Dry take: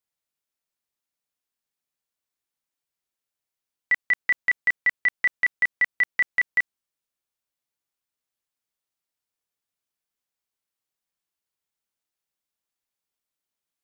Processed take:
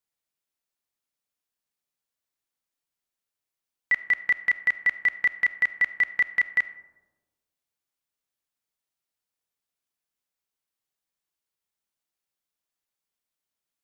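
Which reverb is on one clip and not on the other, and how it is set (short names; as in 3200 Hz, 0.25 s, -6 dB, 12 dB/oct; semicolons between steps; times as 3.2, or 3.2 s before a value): digital reverb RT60 1.2 s, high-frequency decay 0.3×, pre-delay 5 ms, DRR 13.5 dB; gain -1 dB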